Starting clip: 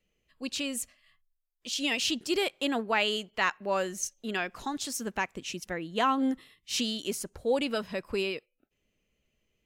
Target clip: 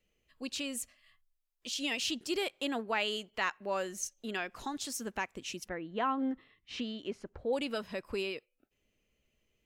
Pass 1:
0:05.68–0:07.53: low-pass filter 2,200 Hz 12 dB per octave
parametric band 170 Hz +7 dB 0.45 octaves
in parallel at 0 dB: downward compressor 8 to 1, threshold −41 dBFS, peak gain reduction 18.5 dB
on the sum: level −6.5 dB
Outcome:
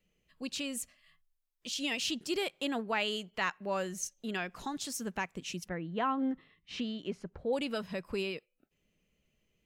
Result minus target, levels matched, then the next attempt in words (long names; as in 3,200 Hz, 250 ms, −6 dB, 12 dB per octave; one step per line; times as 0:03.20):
125 Hz band +6.0 dB
0:05.68–0:07.53: low-pass filter 2,200 Hz 12 dB per octave
parametric band 170 Hz −3.5 dB 0.45 octaves
in parallel at 0 dB: downward compressor 8 to 1, threshold −41 dBFS, peak gain reduction 18.5 dB
on the sum: level −6.5 dB